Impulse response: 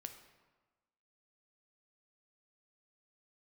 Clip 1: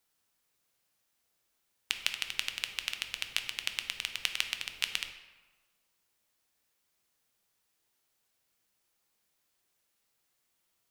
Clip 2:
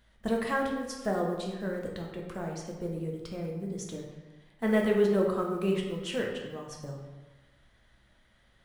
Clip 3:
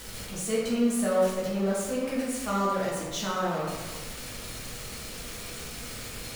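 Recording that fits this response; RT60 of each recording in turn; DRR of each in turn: 1; 1.3, 1.3, 1.3 seconds; 6.5, −1.0, −7.0 decibels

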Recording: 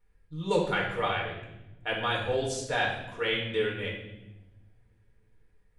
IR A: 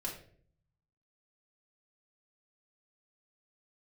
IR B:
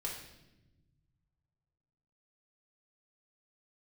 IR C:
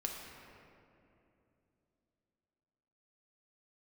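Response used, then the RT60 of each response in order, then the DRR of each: B; 0.55, 1.0, 2.8 seconds; −3.5, −3.0, −0.5 decibels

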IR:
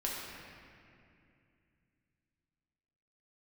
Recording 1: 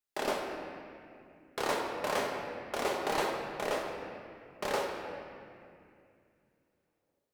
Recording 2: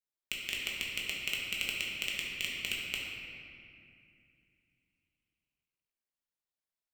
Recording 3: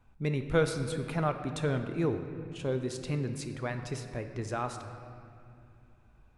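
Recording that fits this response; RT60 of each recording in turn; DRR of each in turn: 2; 2.5, 2.5, 2.6 seconds; 0.0, −5.0, 6.0 decibels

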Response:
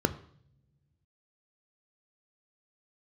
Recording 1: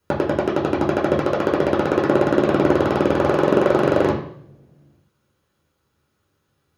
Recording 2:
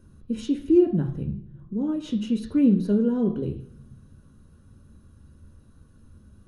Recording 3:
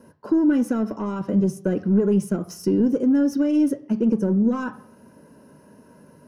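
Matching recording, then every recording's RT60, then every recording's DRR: 3; non-exponential decay, non-exponential decay, non-exponential decay; −3.0, 4.0, 11.0 decibels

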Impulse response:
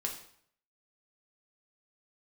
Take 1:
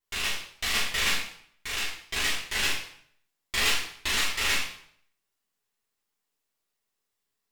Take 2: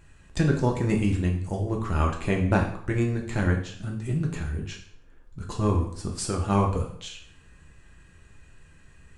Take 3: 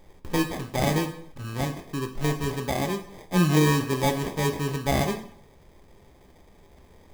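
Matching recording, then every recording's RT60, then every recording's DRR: 2; 0.60, 0.60, 0.60 seconds; −9.0, 0.5, 5.5 decibels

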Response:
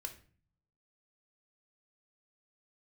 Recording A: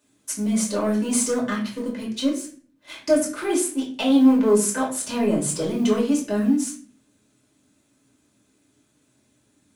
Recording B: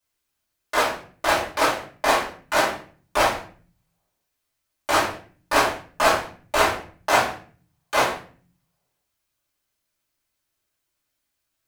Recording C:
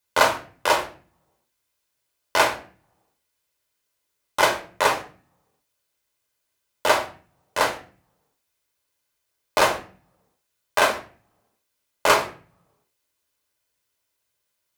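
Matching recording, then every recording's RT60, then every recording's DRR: C; 0.40, 0.40, 0.45 seconds; −4.5, −9.0, 4.0 decibels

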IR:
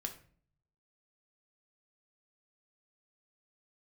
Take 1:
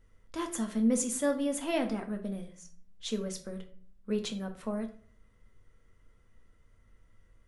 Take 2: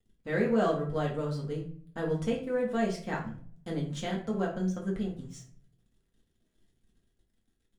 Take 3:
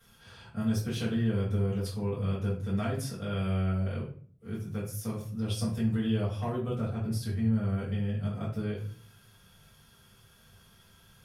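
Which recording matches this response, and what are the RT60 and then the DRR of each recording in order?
1; 0.45, 0.45, 0.45 seconds; 3.5, −3.0, −10.0 decibels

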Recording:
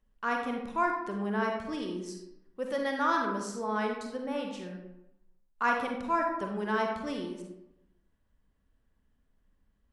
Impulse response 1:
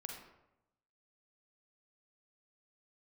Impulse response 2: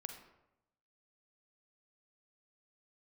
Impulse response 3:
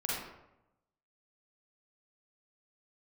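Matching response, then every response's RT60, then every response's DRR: 1; 0.90, 0.90, 0.90 seconds; 1.5, 5.5, −6.0 decibels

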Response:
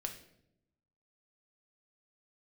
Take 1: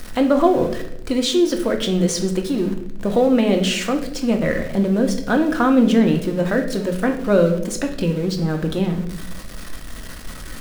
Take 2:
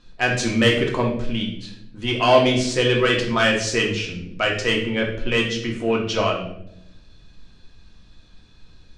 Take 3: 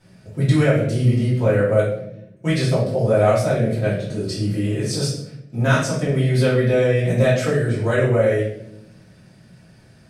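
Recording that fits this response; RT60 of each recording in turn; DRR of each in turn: 1; 0.80, 0.80, 0.75 seconds; 3.5, −1.5, −10.5 decibels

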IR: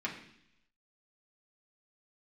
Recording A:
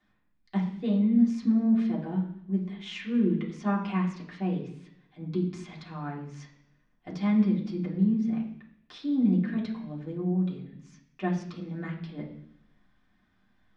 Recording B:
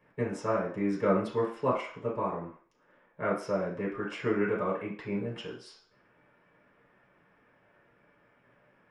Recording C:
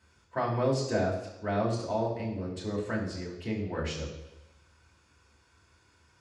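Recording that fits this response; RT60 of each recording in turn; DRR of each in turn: A; 0.70, 0.45, 0.95 seconds; −4.0, −6.5, −3.5 decibels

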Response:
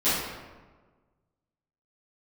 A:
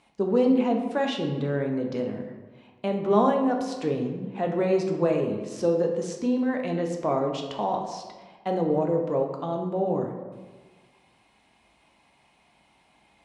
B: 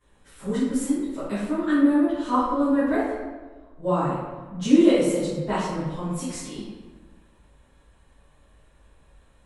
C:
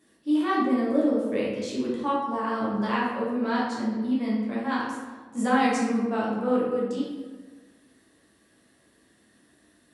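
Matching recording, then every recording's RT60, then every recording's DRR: B; 1.4, 1.4, 1.4 seconds; 2.0, −16.0, −6.5 decibels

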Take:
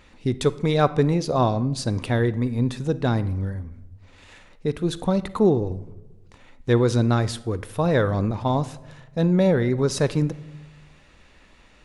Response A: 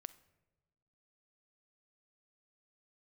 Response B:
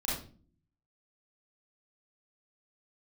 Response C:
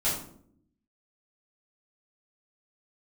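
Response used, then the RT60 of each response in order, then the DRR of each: A; non-exponential decay, 0.40 s, 0.65 s; 15.5, −6.5, −10.0 decibels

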